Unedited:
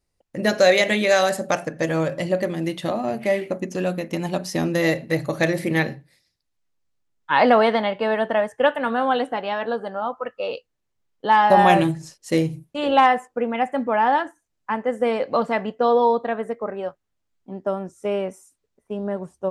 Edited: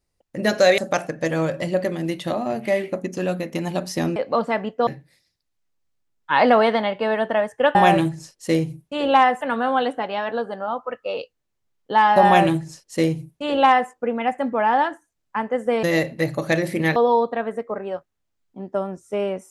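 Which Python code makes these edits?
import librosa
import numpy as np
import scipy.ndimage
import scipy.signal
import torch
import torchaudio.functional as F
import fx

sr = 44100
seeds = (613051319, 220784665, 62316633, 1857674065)

y = fx.edit(x, sr, fx.cut(start_s=0.78, length_s=0.58),
    fx.swap(start_s=4.74, length_s=1.13, other_s=15.17, other_length_s=0.71),
    fx.duplicate(start_s=11.58, length_s=1.66, to_s=8.75), tone=tone)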